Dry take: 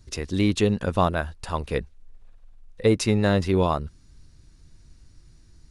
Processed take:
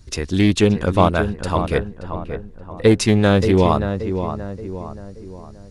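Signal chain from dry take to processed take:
on a send: feedback echo with a low-pass in the loop 577 ms, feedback 46%, low-pass 1,700 Hz, level −8 dB
on the sum: highs frequency-modulated by the lows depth 0.18 ms
level +6 dB

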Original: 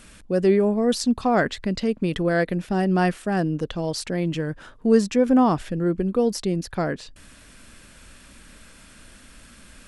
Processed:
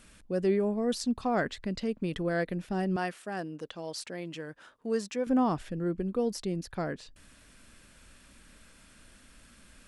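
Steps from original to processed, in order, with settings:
0:02.96–0:05.27: high-pass filter 490 Hz 6 dB per octave
level −8.5 dB

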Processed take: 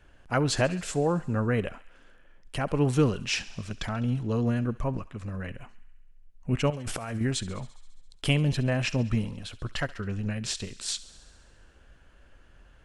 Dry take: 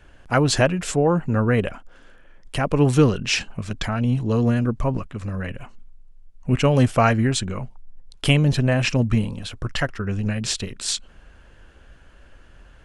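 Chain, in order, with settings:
0:06.70–0:07.21: compressor whose output falls as the input rises −27 dBFS, ratio −1
feedback echo with a high-pass in the loop 68 ms, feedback 74%, high-pass 810 Hz, level −18.5 dB
level −7 dB

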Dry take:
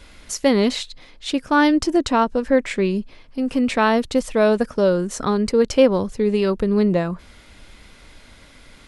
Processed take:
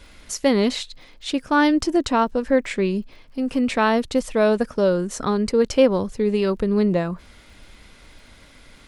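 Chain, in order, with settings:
surface crackle 60 per second −48 dBFS
level −1.5 dB

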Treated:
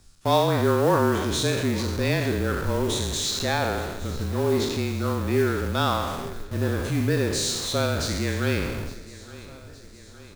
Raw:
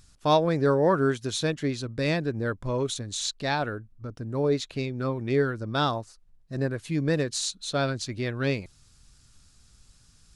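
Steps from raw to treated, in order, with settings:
peak hold with a decay on every bin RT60 1.08 s
in parallel at −8.5 dB: comparator with hysteresis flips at −37.5 dBFS
on the sum: low-shelf EQ 150 Hz +5 dB
on a send: repeating echo 864 ms, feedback 59%, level −18.5 dB
on the sum: noise that follows the level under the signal 23 dB
frequency shifter −29 Hz
level −2 dB

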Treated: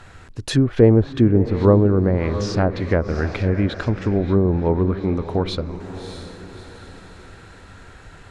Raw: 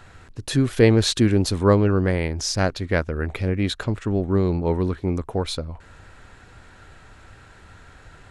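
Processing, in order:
feedback delay with all-pass diffusion 633 ms, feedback 44%, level −12 dB
treble cut that deepens with the level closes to 870 Hz, closed at −15 dBFS
level +3 dB

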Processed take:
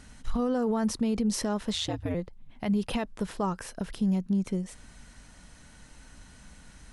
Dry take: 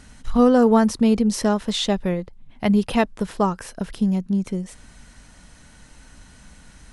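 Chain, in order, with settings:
0:01.74–0:02.15: ring modulation 82 Hz
brickwall limiter −16 dBFS, peak gain reduction 11 dB
level −4 dB

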